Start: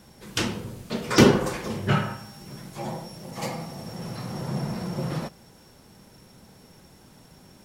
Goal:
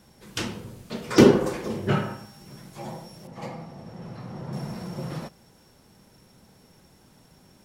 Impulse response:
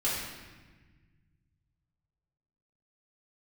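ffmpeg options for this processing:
-filter_complex "[0:a]asettb=1/sr,asplit=3[a][b][c];[a]atrim=end=1.164[d];[b]atrim=start=1.16:end=2.26,asetpts=PTS-STARTPTS,afade=t=in:d=0.004:c=qsin,afade=t=out:st=1.096:d=0.004:c=qsin,equalizer=f=360:w=0.78:g=7.5[e];[c]atrim=start=2.256[f];[d][e]acrossfade=d=0.004:c1=hsin:c2=qsin[g];[g][f]acrossfade=d=0.004:c1=qsin:c2=hsin,asettb=1/sr,asplit=3[h][i][j];[h]atrim=end=3.274[k];[i]atrim=start=3.27:end=4.53,asetpts=PTS-STARTPTS,afade=t=in:d=0.004:c=qsin,afade=t=out:st=1.256:d=0.004:c=qsin,lowpass=f=1.9k:p=1[l];[j]atrim=start=4.526[m];[k][l]acrossfade=d=0.004:c1=hsin:c2=qsin[n];[n][m]acrossfade=d=0.004:c1=qsin:c2=hsin,volume=-4dB"

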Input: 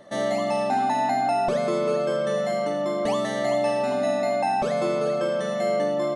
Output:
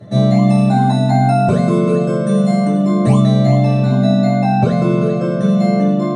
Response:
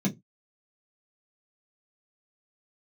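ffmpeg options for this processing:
-filter_complex "[0:a]asettb=1/sr,asplit=3[a][b][c];[a]atrim=end=0.494[d];[b]atrim=start=0.49:end=3.2,asetpts=PTS-STARTPTS,afade=t=in:d=0.004:c=qsin,afade=t=out:st=2.706:d=0.004:c=qsin,equalizer=f=8.5k:t=o:w=0.3:g=14.5[e];[c]atrim=start=3.196[f];[d][e]acrossfade=d=0.004:c1=hsin:c2=qsin[g];[g][f]acrossfade=d=0.004:c1=qsin:c2=hsin[h];[1:a]atrim=start_sample=2205,asetrate=27783,aresample=44100[i];[h][i]afir=irnorm=-1:irlink=0,volume=-1.5dB"

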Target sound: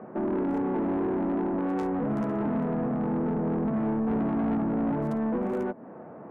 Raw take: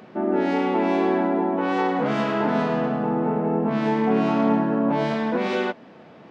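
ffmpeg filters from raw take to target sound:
-filter_complex "[0:a]bass=f=250:g=-3,treble=f=4k:g=-12,acrossover=split=330|1500[a][b][c];[b]acompressor=threshold=-34dB:ratio=16[d];[c]acrusher=bits=3:mix=0:aa=0.5[e];[a][d][e]amix=inputs=3:normalize=0,asoftclip=type=tanh:threshold=-27.5dB,volume=4dB"

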